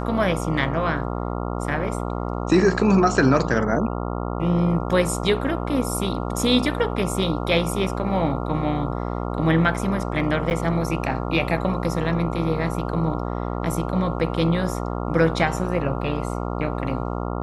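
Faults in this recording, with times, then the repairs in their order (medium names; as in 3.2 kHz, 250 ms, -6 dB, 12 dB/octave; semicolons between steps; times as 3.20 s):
buzz 60 Hz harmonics 23 -27 dBFS
10.50–10.51 s: dropout 9.4 ms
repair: de-hum 60 Hz, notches 23; interpolate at 10.50 s, 9.4 ms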